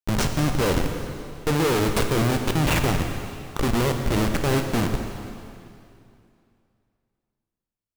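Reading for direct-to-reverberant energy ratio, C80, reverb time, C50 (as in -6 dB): 4.0 dB, 6.5 dB, 2.6 s, 5.5 dB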